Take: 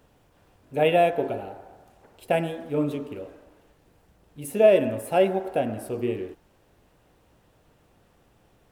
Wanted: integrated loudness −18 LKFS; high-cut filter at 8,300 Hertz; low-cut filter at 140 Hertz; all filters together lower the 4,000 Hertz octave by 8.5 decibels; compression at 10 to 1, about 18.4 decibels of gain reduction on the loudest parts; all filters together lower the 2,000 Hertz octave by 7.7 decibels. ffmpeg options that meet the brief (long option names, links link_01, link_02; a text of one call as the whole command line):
ffmpeg -i in.wav -af "highpass=140,lowpass=8300,equalizer=frequency=2000:width_type=o:gain=-7,equalizer=frequency=4000:width_type=o:gain=-9,acompressor=threshold=-31dB:ratio=10,volume=19.5dB" out.wav